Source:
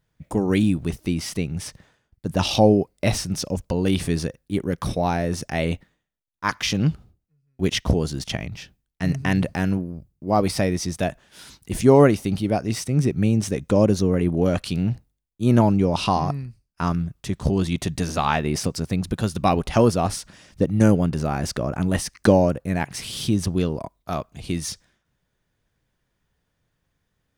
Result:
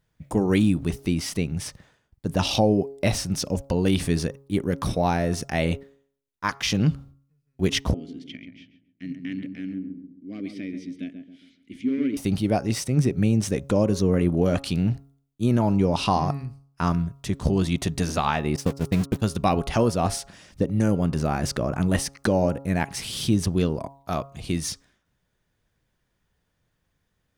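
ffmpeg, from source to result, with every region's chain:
-filter_complex "[0:a]asettb=1/sr,asplit=3[s0][s1][s2];[s0]atrim=end=7.944[s3];[s1]atrim=start=7.94:end=12.17,asetpts=PTS-STARTPTS,afade=t=in:d=0.004:c=qsin,afade=t=out:st=4.226:d=0.004:c=qsin,asoftclip=type=hard:threshold=0.251,asplit=3[s4][s5][s6];[s4]bandpass=f=270:t=q:w=8,volume=1[s7];[s5]bandpass=f=2290:t=q:w=8,volume=0.501[s8];[s6]bandpass=f=3010:t=q:w=8,volume=0.355[s9];[s7][s8][s9]amix=inputs=3:normalize=0,asplit=2[s10][s11];[s11]adelay=135,lowpass=f=1100:p=1,volume=0.501,asplit=2[s12][s13];[s13]adelay=135,lowpass=f=1100:p=1,volume=0.41,asplit=2[s14][s15];[s15]adelay=135,lowpass=f=1100:p=1,volume=0.41,asplit=2[s16][s17];[s17]adelay=135,lowpass=f=1100:p=1,volume=0.41,asplit=2[s18][s19];[s19]adelay=135,lowpass=f=1100:p=1,volume=0.41[s20];[s10][s12][s14][s16][s18][s20]amix=inputs=6:normalize=0,atrim=end_sample=186543[s21];[s2]atrim=start=12.166[s22];[s3][s21]acrossfade=d=0.004:c1=hsin:c2=qsin[s23];[s23][s22]acrossfade=d=0.004:c1=qsin:c2=hsin,asettb=1/sr,asplit=3[s24][s25][s26];[s24]atrim=end=18.564[s27];[s25]atrim=start=18.56:end=19.22,asetpts=PTS-STARTPTS,afade=t=in:d=0.004:c=qsin,afade=t=out:st=0.656:d=0.004:c=qsin,aeval=exprs='val(0)+0.5*0.0447*sgn(val(0))':c=same,agate=range=0.00708:threshold=0.0631:ratio=16:release=100:detection=peak[s28];[s26]atrim=start=19.216[s29];[s27][s28]acrossfade=d=0.004:c1=hsin:c2=qsin[s30];[s30][s29]acrossfade=d=0.004:c1=qsin:c2=hsin,bandreject=f=137.8:t=h:w=4,bandreject=f=275.6:t=h:w=4,bandreject=f=413.4:t=h:w=4,bandreject=f=551.2:t=h:w=4,bandreject=f=689:t=h:w=4,bandreject=f=826.8:t=h:w=4,bandreject=f=964.6:t=h:w=4,bandreject=f=1102.4:t=h:w=4,bandreject=f=1240.2:t=h:w=4,bandreject=f=1378:t=h:w=4,alimiter=limit=0.299:level=0:latency=1:release=247"

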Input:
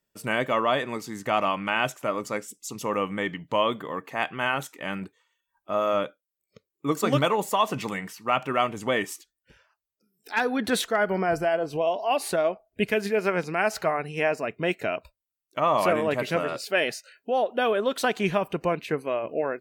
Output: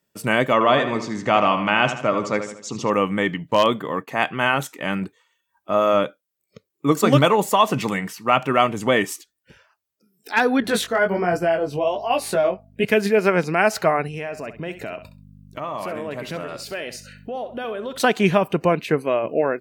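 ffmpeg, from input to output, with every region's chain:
-filter_complex "[0:a]asettb=1/sr,asplit=3[s0][s1][s2];[s0]atrim=end=0.534[s3];[s1]atrim=start=0.53:end=2.9,asetpts=PTS-STARTPTS,afade=t=in:d=0.004:c=qsin,afade=t=out:st=2.366:d=0.004:c=qsin,lowpass=f=6700:w=0.5412,lowpass=f=6700:w=1.3066,asplit=2[s4][s5];[s5]adelay=77,lowpass=f=4500:p=1,volume=0.355,asplit=2[s6][s7];[s7]adelay=77,lowpass=f=4500:p=1,volume=0.46,asplit=2[s8][s9];[s9]adelay=77,lowpass=f=4500:p=1,volume=0.46,asplit=2[s10][s11];[s11]adelay=77,lowpass=f=4500:p=1,volume=0.46,asplit=2[s12][s13];[s13]adelay=77,lowpass=f=4500:p=1,volume=0.46[s14];[s4][s6][s8][s10][s12][s14]amix=inputs=6:normalize=0,atrim=end_sample=104517[s15];[s2]atrim=start=2.896[s16];[s3][s15]acrossfade=d=0.004:c1=hsin:c2=qsin[s17];[s17][s16]acrossfade=d=0.004:c1=qsin:c2=hsin,asettb=1/sr,asplit=3[s18][s19][s20];[s18]atrim=end=3.514[s21];[s19]atrim=start=3.51:end=4.08,asetpts=PTS-STARTPTS,afade=t=in:d=0.004:c=qsin,afade=t=out:st=0.566:d=0.004:c=qsin,agate=range=0.0224:threshold=0.0112:ratio=3:release=100:detection=peak,aeval=exprs='0.237*(abs(mod(val(0)/0.237+3,4)-2)-1)':c=same[s22];[s20]atrim=start=4.076[s23];[s21][s22]acrossfade=d=0.004:c1=hsin:c2=qsin[s24];[s24][s23]acrossfade=d=0.004:c1=qsin:c2=hsin,asettb=1/sr,asplit=3[s25][s26][s27];[s25]atrim=end=10.604[s28];[s26]atrim=start=10.6:end=12.85,asetpts=PTS-STARTPTS,afade=t=in:d=0.004:c=qsin,afade=t=out:st=2.246:d=0.004:c=qsin,flanger=delay=16.5:depth=4.9:speed=1.3,aeval=exprs='val(0)+0.00178*(sin(2*PI*50*n/s)+sin(2*PI*2*50*n/s)/2+sin(2*PI*3*50*n/s)/3+sin(2*PI*4*50*n/s)/4+sin(2*PI*5*50*n/s)/5)':c=same[s29];[s27]atrim=start=12.846[s30];[s28][s29]acrossfade=d=0.004:c1=hsin:c2=qsin[s31];[s31][s30]acrossfade=d=0.004:c1=qsin:c2=hsin,asettb=1/sr,asplit=3[s32][s33][s34];[s32]atrim=end=14.074[s35];[s33]atrim=start=14.07:end=18,asetpts=PTS-STARTPTS,afade=t=in:d=0.004:c=qsin,afade=t=out:st=3.926:d=0.004:c=qsin,aeval=exprs='val(0)+0.00355*(sin(2*PI*50*n/s)+sin(2*PI*2*50*n/s)/2+sin(2*PI*3*50*n/s)/3+sin(2*PI*4*50*n/s)/4+sin(2*PI*5*50*n/s)/5)':c=same,acompressor=threshold=0.0112:ratio=2.5:attack=3.2:release=140:knee=1:detection=peak,aecho=1:1:66|132:0.251|0.0452,atrim=end_sample=173313[s36];[s34]atrim=start=17.996[s37];[s35][s36]acrossfade=d=0.004:c1=hsin:c2=qsin[s38];[s38][s37]acrossfade=d=0.004:c1=qsin:c2=hsin,highpass=98,lowshelf=f=230:g=5,volume=2"

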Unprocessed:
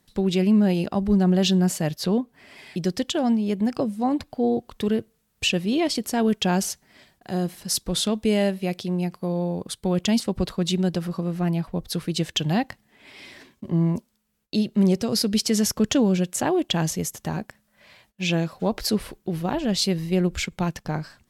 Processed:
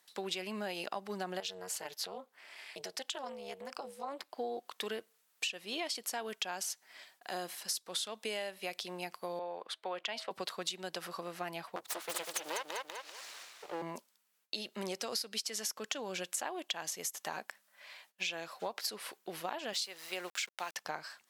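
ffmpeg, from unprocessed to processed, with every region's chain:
-filter_complex "[0:a]asettb=1/sr,asplit=3[s0][s1][s2];[s0]atrim=end=1.404[s3];[s1]atrim=start=1.4:end=4.38,asetpts=PTS-STARTPTS,afade=t=in:d=0.004:c=qsin,afade=t=out:st=2.976:d=0.004:c=qsin,acompressor=threshold=0.0631:ratio=4:attack=3.2:release=140:knee=1:detection=peak,tremolo=f=280:d=0.974[s4];[s2]atrim=start=4.376[s5];[s3][s4]acrossfade=d=0.004:c1=hsin:c2=qsin[s6];[s6][s5]acrossfade=d=0.004:c1=qsin:c2=hsin,asettb=1/sr,asplit=3[s7][s8][s9];[s7]atrim=end=9.394[s10];[s8]atrim=start=9.39:end=10.31,asetpts=PTS-STARTPTS,afade=t=in:d=0.004:c=qsin,afade=t=out:st=0.916:d=0.004:c=qsin,acrossover=split=380 3600:gain=0.251 1 0.112[s11][s12][s13];[s11][s12][s13]amix=inputs=3:normalize=0,bandreject=f=323.5:t=h:w=4,bandreject=f=647:t=h:w=4[s14];[s9]atrim=start=10.306[s15];[s10][s14]acrossfade=d=0.004:c1=hsin:c2=qsin[s16];[s16][s15]acrossfade=d=0.004:c1=qsin:c2=hsin,asettb=1/sr,asplit=3[s17][s18][s19];[s17]atrim=end=11.764[s20];[s18]atrim=start=11.76:end=13.82,asetpts=PTS-STARTPTS,afade=t=in:d=0.004:c=qsin,afade=t=out:st=2.056:d=0.004:c=qsin,bandreject=f=490:w=14,aeval=exprs='abs(val(0))':c=same,aecho=1:1:195|390|585|780:0.562|0.186|0.0612|0.0202,atrim=end_sample=90846[s21];[s19]atrim=start=13.816[s22];[s20][s21]acrossfade=d=0.004:c1=hsin:c2=qsin[s23];[s23][s22]acrossfade=d=0.004:c1=qsin:c2=hsin,asettb=1/sr,asplit=3[s24][s25][s26];[s24]atrim=end=19.734[s27];[s25]atrim=start=19.73:end=20.76,asetpts=PTS-STARTPTS,afade=t=in:d=0.004:c=qsin,afade=t=out:st=1.026:d=0.004:c=qsin,highpass=f=610:p=1,aeval=exprs='val(0)*gte(abs(val(0)),0.00841)':c=same[s28];[s26]atrim=start=20.756[s29];[s27][s28]acrossfade=d=0.004:c1=hsin:c2=qsin[s30];[s30][s29]acrossfade=d=0.004:c1=qsin:c2=hsin,highpass=800,acompressor=threshold=0.02:ratio=10"

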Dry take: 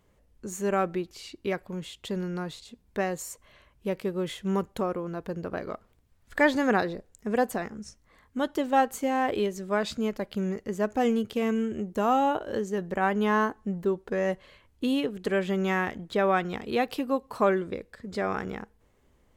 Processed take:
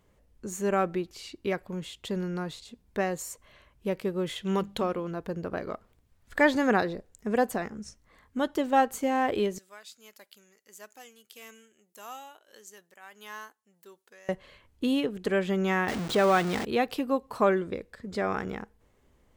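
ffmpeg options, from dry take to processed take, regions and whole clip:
-filter_complex "[0:a]asettb=1/sr,asplit=3[s0][s1][s2];[s0]atrim=end=4.364[s3];[s1]atrim=start=4.36:end=5.11,asetpts=PTS-STARTPTS,afade=t=in:d=0.004:c=qsin,afade=t=out:st=0.746:d=0.004:c=qsin,equalizer=f=3400:w=1.3:g=9.5,bandreject=f=50:t=h:w=6,bandreject=f=100:t=h:w=6,bandreject=f=150:t=h:w=6,bandreject=f=200:t=h:w=6,bandreject=f=250:t=h:w=6,bandreject=f=300:t=h:w=6[s4];[s2]atrim=start=5.106[s5];[s3][s4]acrossfade=d=0.004:c1=hsin:c2=qsin[s6];[s6][s5]acrossfade=d=0.004:c1=qsin:c2=hsin,asettb=1/sr,asplit=3[s7][s8][s9];[s7]atrim=end=9.584[s10];[s8]atrim=start=9.58:end=14.29,asetpts=PTS-STARTPTS,afade=t=in:d=0.004:c=qsin,afade=t=out:st=4.706:d=0.004:c=qsin,aderivative,tremolo=f=1.6:d=0.56[s11];[s9]atrim=start=14.286[s12];[s10][s11]acrossfade=d=0.004:c1=hsin:c2=qsin[s13];[s13][s12]acrossfade=d=0.004:c1=qsin:c2=hsin,asettb=1/sr,asplit=3[s14][s15][s16];[s14]atrim=end=15.884[s17];[s15]atrim=start=15.88:end=16.65,asetpts=PTS-STARTPTS,afade=t=in:d=0.004:c=qsin,afade=t=out:st=0.766:d=0.004:c=qsin,aeval=exprs='val(0)+0.5*0.0398*sgn(val(0))':c=same,highpass=f=92:p=1,equalizer=f=12000:t=o:w=0.23:g=-14[s18];[s16]atrim=start=16.646[s19];[s17][s18]acrossfade=d=0.004:c1=hsin:c2=qsin[s20];[s20][s19]acrossfade=d=0.004:c1=qsin:c2=hsin"

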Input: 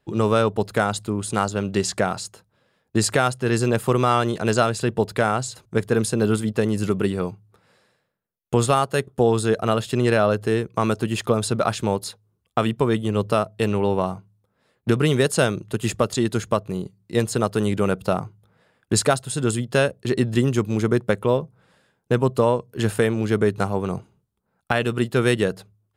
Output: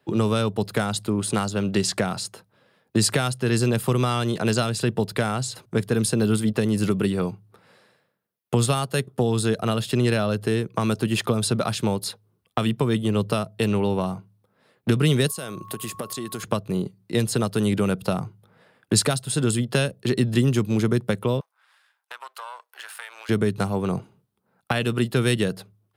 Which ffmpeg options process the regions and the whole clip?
-filter_complex "[0:a]asettb=1/sr,asplit=3[s0][s1][s2];[s0]atrim=end=15.284[s3];[s1]atrim=start=15.28:end=16.43,asetpts=PTS-STARTPTS,afade=t=in:d=0.004:c=qsin,afade=t=out:st=1.146:d=0.004:c=qsin,aemphasis=mode=production:type=50fm,acompressor=threshold=0.0251:ratio=6:attack=3.2:release=140:knee=1:detection=peak,aeval=exprs='val(0)+0.00501*sin(2*PI*1100*n/s)':c=same[s4];[s2]atrim=start=16.426[s5];[s3][s4]acrossfade=d=0.004:c1=hsin:c2=qsin[s6];[s6][s5]acrossfade=d=0.004:c1=qsin:c2=hsin,asettb=1/sr,asplit=3[s7][s8][s9];[s7]atrim=end=21.404[s10];[s8]atrim=start=21.4:end=23.29,asetpts=PTS-STARTPTS,afade=t=in:d=0.004:c=qsin,afade=t=out:st=1.886:d=0.004:c=qsin,aeval=exprs='if(lt(val(0),0),0.447*val(0),val(0))':c=same,highpass=f=970:w=0.5412,highpass=f=970:w=1.3066,acompressor=threshold=0.00891:ratio=3:attack=3.2:release=140:knee=1:detection=peak[s11];[s9]atrim=start=23.286[s12];[s10][s11]acrossfade=d=0.004:c1=hsin:c2=qsin[s13];[s13][s12]acrossfade=d=0.004:c1=qsin:c2=hsin,highpass=120,equalizer=f=7000:t=o:w=0.53:g=-6,acrossover=split=210|3000[s14][s15][s16];[s15]acompressor=threshold=0.0398:ratio=6[s17];[s14][s17][s16]amix=inputs=3:normalize=0,volume=1.68"

